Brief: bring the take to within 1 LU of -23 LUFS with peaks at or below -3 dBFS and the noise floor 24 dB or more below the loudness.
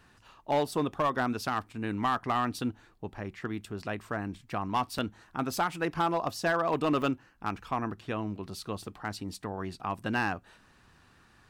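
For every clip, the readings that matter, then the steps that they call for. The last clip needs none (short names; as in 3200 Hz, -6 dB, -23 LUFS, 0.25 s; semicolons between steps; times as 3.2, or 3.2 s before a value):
clipped 0.5%; flat tops at -20.5 dBFS; dropouts 2; longest dropout 4.2 ms; loudness -32.5 LUFS; peak -20.5 dBFS; loudness target -23.0 LUFS
-> clip repair -20.5 dBFS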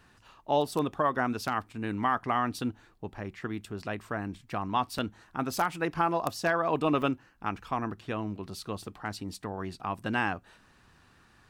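clipped 0.0%; dropouts 2; longest dropout 4.2 ms
-> interpolate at 4.98/7.02, 4.2 ms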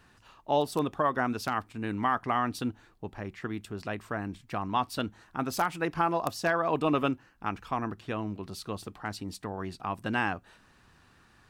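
dropouts 0; loudness -31.5 LUFS; peak -12.5 dBFS; loudness target -23.0 LUFS
-> gain +8.5 dB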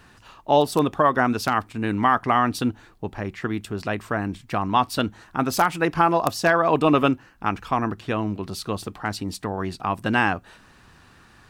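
loudness -23.0 LUFS; peak -4.0 dBFS; noise floor -53 dBFS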